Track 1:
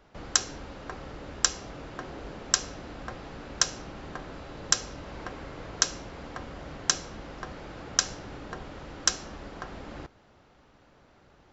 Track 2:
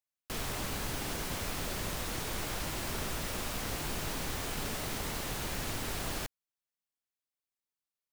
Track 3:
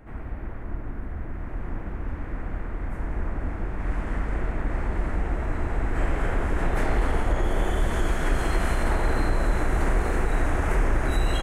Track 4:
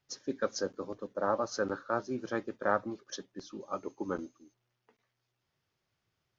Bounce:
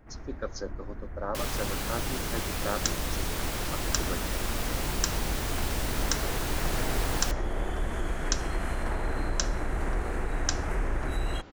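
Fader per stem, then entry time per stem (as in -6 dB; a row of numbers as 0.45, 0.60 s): -6.5, +3.0, -7.0, -3.5 dB; 2.50, 1.05, 0.00, 0.00 s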